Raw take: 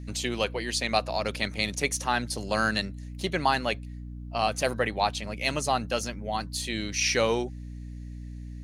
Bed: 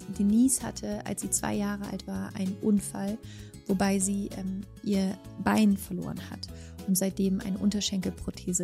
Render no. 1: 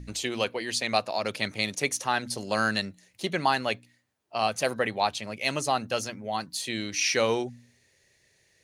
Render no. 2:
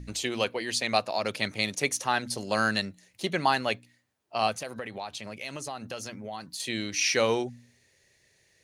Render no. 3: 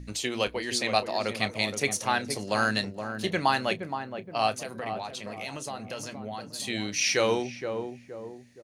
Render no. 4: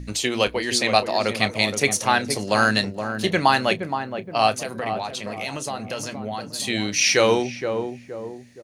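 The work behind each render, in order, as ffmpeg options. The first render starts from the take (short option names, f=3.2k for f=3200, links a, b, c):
-af "bandreject=f=60:t=h:w=4,bandreject=f=120:t=h:w=4,bandreject=f=180:t=h:w=4,bandreject=f=240:t=h:w=4,bandreject=f=300:t=h:w=4"
-filter_complex "[0:a]asettb=1/sr,asplit=3[a][b][c];[a]atrim=end=4.544[d];[b]atrim=start=4.54:end=6.6,asetpts=PTS-STARTPTS,afade=t=in:d=0.004:c=qsin,afade=t=out:st=2.056:d=0.004:c=qsin,acompressor=threshold=-34dB:ratio=4:attack=3.2:release=140:knee=1:detection=peak[e];[c]atrim=start=6.596[f];[d][e]acrossfade=d=0.004:c1=hsin:c2=qsin[g];[g][f]acrossfade=d=0.004:c1=qsin:c2=hsin"
-filter_complex "[0:a]asplit=2[a][b];[b]adelay=29,volume=-14dB[c];[a][c]amix=inputs=2:normalize=0,asplit=2[d][e];[e]adelay=470,lowpass=f=880:p=1,volume=-6dB,asplit=2[f][g];[g]adelay=470,lowpass=f=880:p=1,volume=0.47,asplit=2[h][i];[i]adelay=470,lowpass=f=880:p=1,volume=0.47,asplit=2[j][k];[k]adelay=470,lowpass=f=880:p=1,volume=0.47,asplit=2[l][m];[m]adelay=470,lowpass=f=880:p=1,volume=0.47,asplit=2[n][o];[o]adelay=470,lowpass=f=880:p=1,volume=0.47[p];[f][h][j][l][n][p]amix=inputs=6:normalize=0[q];[d][q]amix=inputs=2:normalize=0"
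-af "volume=7dB,alimiter=limit=-3dB:level=0:latency=1"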